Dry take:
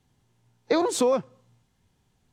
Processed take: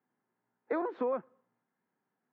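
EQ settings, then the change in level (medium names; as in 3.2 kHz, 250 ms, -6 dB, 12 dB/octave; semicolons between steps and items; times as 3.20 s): high-pass 210 Hz 24 dB/octave; four-pole ladder low-pass 2 kHz, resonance 40%; distance through air 130 m; -2.0 dB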